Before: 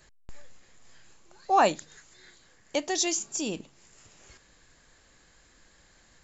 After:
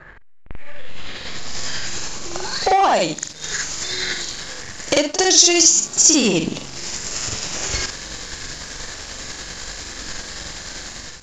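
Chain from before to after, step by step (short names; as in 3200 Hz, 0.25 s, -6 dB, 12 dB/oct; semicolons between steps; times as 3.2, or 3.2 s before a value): compressor 16:1, threshold -38 dBFS, peak gain reduction 22.5 dB; sample leveller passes 3; AGC gain up to 11 dB; granular stretch 1.8×, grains 0.196 s; low-pass sweep 1500 Hz -> 5800 Hz, 0.03–1.63; gain +6.5 dB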